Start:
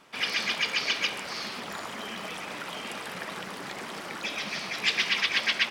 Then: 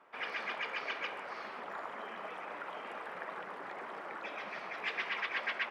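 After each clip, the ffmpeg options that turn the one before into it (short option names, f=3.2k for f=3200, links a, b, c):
-filter_complex "[0:a]acrossover=split=370 2000:gain=0.158 1 0.0631[a][b][c];[a][b][c]amix=inputs=3:normalize=0,volume=-2.5dB"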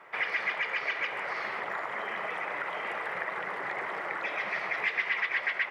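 -af "acompressor=threshold=-41dB:ratio=6,equalizer=f=125:t=o:w=0.33:g=8,equalizer=f=250:t=o:w=0.33:g=-10,equalizer=f=2k:t=o:w=0.33:g=10,volume=9dB"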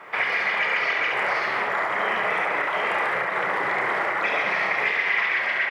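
-filter_complex "[0:a]alimiter=level_in=0.5dB:limit=-24dB:level=0:latency=1:release=78,volume=-0.5dB,asplit=2[a][b];[b]aecho=0:1:31|71:0.501|0.631[c];[a][c]amix=inputs=2:normalize=0,volume=9dB"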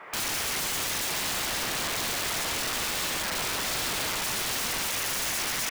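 -af "aeval=exprs='(mod(14.1*val(0)+1,2)-1)/14.1':c=same,volume=-2dB"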